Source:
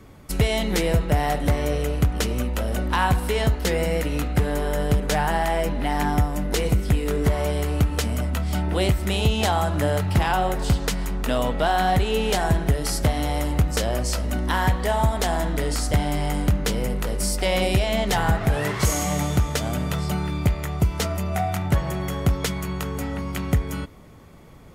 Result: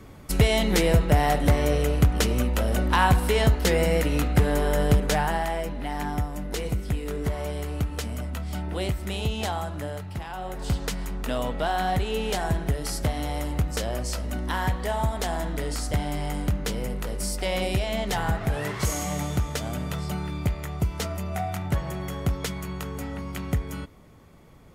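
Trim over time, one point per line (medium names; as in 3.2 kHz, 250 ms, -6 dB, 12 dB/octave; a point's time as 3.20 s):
4.93 s +1 dB
5.68 s -7 dB
9.47 s -7 dB
10.29 s -15 dB
10.74 s -5 dB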